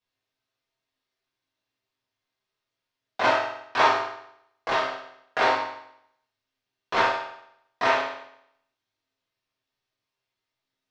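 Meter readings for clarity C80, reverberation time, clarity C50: 6.0 dB, 0.75 s, 2.5 dB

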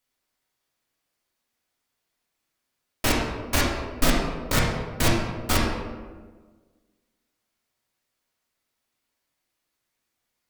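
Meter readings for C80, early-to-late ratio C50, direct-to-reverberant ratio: 3.5 dB, 0.5 dB, -4.0 dB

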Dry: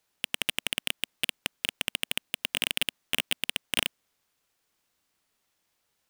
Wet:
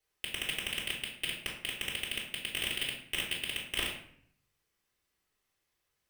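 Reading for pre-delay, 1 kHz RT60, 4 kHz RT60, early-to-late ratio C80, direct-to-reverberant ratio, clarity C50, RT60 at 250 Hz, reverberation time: 3 ms, 0.60 s, 0.45 s, 8.5 dB, -7.5 dB, 5.0 dB, 0.85 s, 0.60 s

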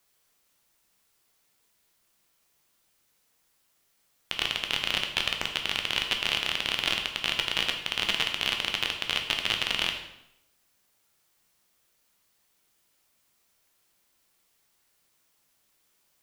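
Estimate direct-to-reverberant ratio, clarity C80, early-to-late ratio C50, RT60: 3.0 dB, 9.5 dB, 7.0 dB, 0.85 s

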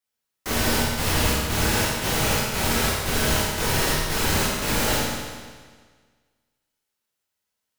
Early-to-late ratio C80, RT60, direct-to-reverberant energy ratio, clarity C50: 1.0 dB, 1.6 s, -8.0 dB, -1.5 dB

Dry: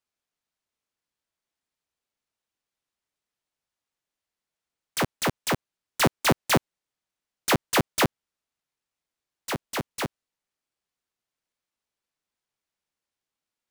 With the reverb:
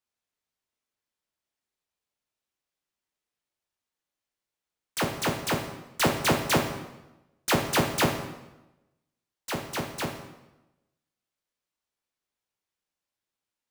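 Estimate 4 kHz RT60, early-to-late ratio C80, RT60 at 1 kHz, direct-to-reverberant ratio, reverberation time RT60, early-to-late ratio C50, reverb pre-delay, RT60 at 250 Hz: 0.85 s, 8.5 dB, 1.0 s, 2.5 dB, 1.0 s, 6.5 dB, 6 ms, 1.1 s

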